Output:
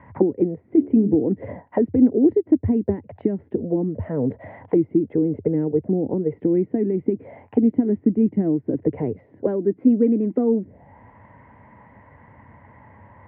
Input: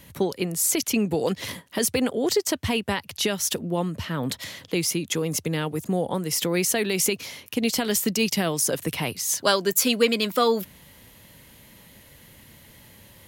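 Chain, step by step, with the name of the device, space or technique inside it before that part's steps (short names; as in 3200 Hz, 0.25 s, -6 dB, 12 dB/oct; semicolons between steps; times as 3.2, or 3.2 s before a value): 0.71–1.12 de-hum 70.67 Hz, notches 16; envelope filter bass rig (envelope low-pass 320–1100 Hz down, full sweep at -21 dBFS; speaker cabinet 77–2200 Hz, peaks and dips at 92 Hz +5 dB, 170 Hz -6 dB, 360 Hz -6 dB, 530 Hz -4 dB, 1200 Hz -9 dB, 2000 Hz +9 dB); gain +4.5 dB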